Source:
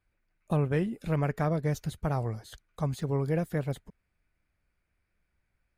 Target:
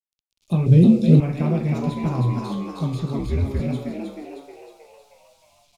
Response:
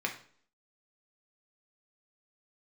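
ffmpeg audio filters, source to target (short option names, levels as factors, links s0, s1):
-filter_complex "[1:a]atrim=start_sample=2205,afade=t=out:st=0.38:d=0.01,atrim=end_sample=17199[s0];[0:a][s0]afir=irnorm=-1:irlink=0,acrossover=split=100|2000[s1][s2][s3];[s3]acompressor=threshold=0.00158:ratio=6[s4];[s1][s2][s4]amix=inputs=3:normalize=0,asettb=1/sr,asplit=3[s5][s6][s7];[s5]atrim=end=1.824[s8];[s6]atrim=start=1.82:end=2.51,asetpts=PTS-STARTPTS,afade=t=in:d=0.004:c=qsin,afade=t=out:st=0.686:d=0.004:c=qsin,aeval=exprs='val(0)+0.0282*sin(2*PI*1000*n/s)':c=same[s9];[s7]atrim=start=2.506[s10];[s8][s9]acrossfade=d=0.004:c1=hsin:c2=qsin[s11];[s11][s10]acrossfade=d=0.004:c1=qsin:c2=hsin,asplit=2[s12][s13];[s13]asplit=7[s14][s15][s16][s17][s18][s19][s20];[s14]adelay=313,afreqshift=76,volume=0.631[s21];[s15]adelay=626,afreqshift=152,volume=0.347[s22];[s16]adelay=939,afreqshift=228,volume=0.191[s23];[s17]adelay=1252,afreqshift=304,volume=0.105[s24];[s18]adelay=1565,afreqshift=380,volume=0.0575[s25];[s19]adelay=1878,afreqshift=456,volume=0.0316[s26];[s20]adelay=2191,afreqshift=532,volume=0.0174[s27];[s21][s22][s23][s24][s25][s26][s27]amix=inputs=7:normalize=0[s28];[s12][s28]amix=inputs=2:normalize=0,acrusher=bits=10:mix=0:aa=0.000001,asettb=1/sr,asplit=3[s29][s30][s31];[s29]atrim=end=0.664[s32];[s30]atrim=start=0.66:end=1.2,asetpts=PTS-STARTPTS,afade=t=in:d=0.004:c=qsin,afade=t=out:st=0.536:d=0.004:c=qsin,equalizer=f=125:t=o:w=1:g=10,equalizer=f=250:t=o:w=1:g=5,equalizer=f=500:t=o:w=1:g=8,equalizer=f=1000:t=o:w=1:g=-10,equalizer=f=2000:t=o:w=1:g=-7,equalizer=f=4000:t=o:w=1:g=9,equalizer=f=8000:t=o:w=1:g=6[s33];[s31]atrim=start=1.196[s34];[s32][s33]acrossfade=d=0.004:c1=hsin:c2=qsin[s35];[s35][s34]acrossfade=d=0.004:c1=qsin:c2=hsin,aexciter=amount=7.8:drive=9.4:freq=2700,aemphasis=mode=reproduction:type=riaa,asettb=1/sr,asplit=3[s36][s37][s38];[s36]atrim=end=3.194[s39];[s37]atrim=start=3.19:end=3.6,asetpts=PTS-STARTPTS,afade=t=in:d=0.004:c=qsin,afade=t=out:st=0.406:d=0.004:c=qsin,afreqshift=-84[s40];[s38]atrim=start=3.596[s41];[s39][s40]acrossfade=d=0.004:c1=hsin:c2=qsin[s42];[s42][s41]acrossfade=d=0.004:c1=qsin:c2=hsin,volume=0.531"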